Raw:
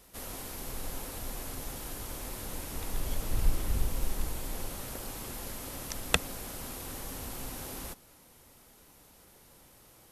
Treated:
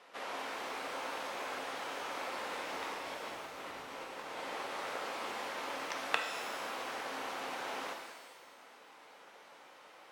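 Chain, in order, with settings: compressor, threshold -31 dBFS, peak gain reduction 12.5 dB; BPF 630–2500 Hz; shimmer reverb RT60 1.2 s, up +12 st, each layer -8 dB, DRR 2 dB; gain +7 dB

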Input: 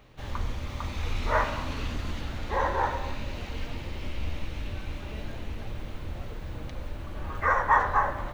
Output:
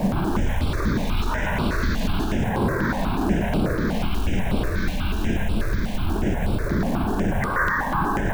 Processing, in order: octaver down 2 oct, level -2 dB; wind noise 420 Hz -27 dBFS; in parallel at -2.5 dB: negative-ratio compressor -30 dBFS, ratio -1; on the sum: thinning echo 0.113 s, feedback 46%, high-pass 350 Hz, level -3.5 dB; on a send at -23 dB: reverb RT60 2.0 s, pre-delay 88 ms; on the sum: companded quantiser 6-bit; limiter -18.5 dBFS, peak gain reduction 12 dB; thirty-one-band EQ 200 Hz +7 dB, 500 Hz -5 dB, 1600 Hz +8 dB; step phaser 8.2 Hz 360–6400 Hz; gain +5.5 dB

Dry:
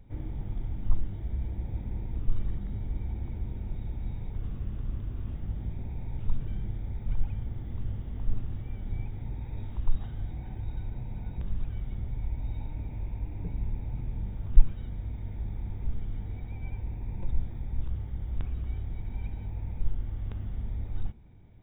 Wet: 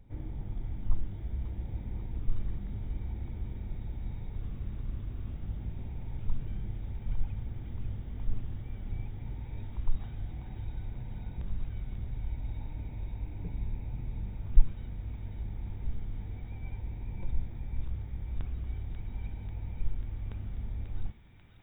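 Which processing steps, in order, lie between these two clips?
thin delay 0.54 s, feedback 72%, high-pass 1500 Hz, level -4 dB; gain -3 dB

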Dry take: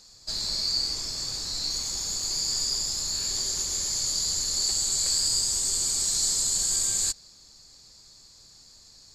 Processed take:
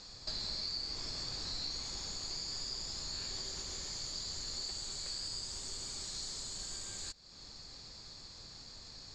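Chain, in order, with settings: compressor 4:1, threshold -41 dBFS, peak gain reduction 16 dB; LPF 4000 Hz 12 dB/oct; gain +6 dB

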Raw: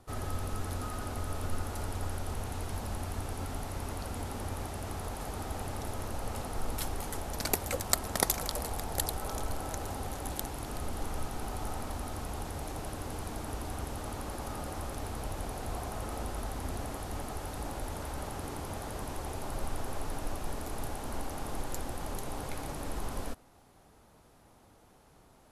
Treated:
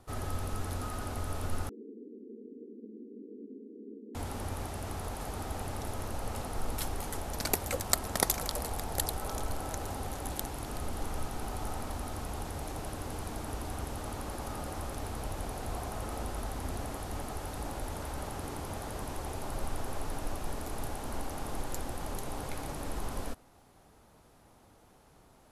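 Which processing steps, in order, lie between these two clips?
1.69–4.15 Chebyshev band-pass 210–470 Hz, order 5

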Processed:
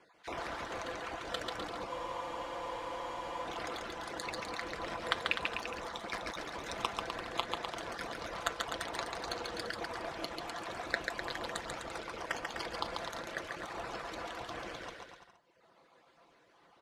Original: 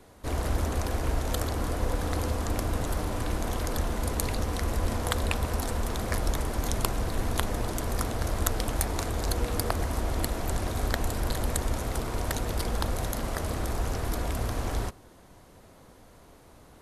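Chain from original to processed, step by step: random spectral dropouts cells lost 23%; LPF 3500 Hz 12 dB/oct; reverb removal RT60 1.9 s; HPF 1000 Hz 6 dB/oct; comb 5.9 ms, depth 38%; in parallel at -6.5 dB: crossover distortion -47 dBFS; on the sum: flange 0.12 Hz, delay 6.8 ms, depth 5.5 ms, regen -86%; on a send: bouncing-ball echo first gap 0.14 s, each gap 0.8×, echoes 5; on the sum: spectral freeze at 1.91, 1.54 s; gain +3 dB

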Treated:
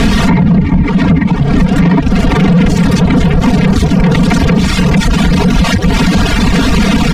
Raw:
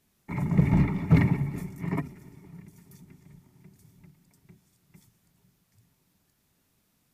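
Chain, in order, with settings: zero-crossing step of -26.5 dBFS; LPF 3500 Hz 12 dB/oct; low shelf 190 Hz +10 dB; comb 4.3 ms, depth 89%; reverb removal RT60 1.2 s; compressor 12:1, threshold -26 dBFS, peak gain reduction 20 dB; soft clip -20 dBFS, distortion -25 dB; maximiser +27 dB; gain -1 dB

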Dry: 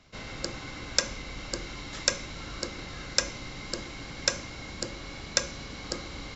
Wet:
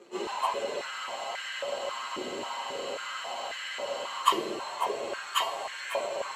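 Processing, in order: pitch shift by moving bins +11.5 st; reverse; upward compressor, threshold -47 dBFS; reverse; reverb RT60 3.5 s, pre-delay 3 ms, DRR 3.5 dB; spectral freeze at 0.94, 3.27 s; stepped high-pass 3.7 Hz 370–1700 Hz

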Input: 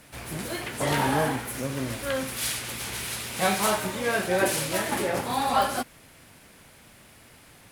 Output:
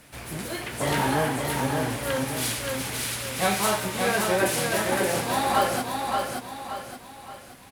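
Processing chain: feedback echo 0.574 s, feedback 41%, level -4 dB

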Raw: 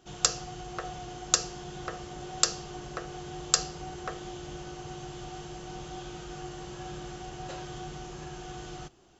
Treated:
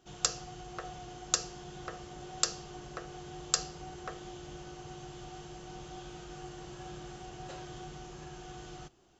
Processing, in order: 5.58–7.85 warbling echo 0.251 s, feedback 68%, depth 179 cents, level -17 dB; gain -5 dB

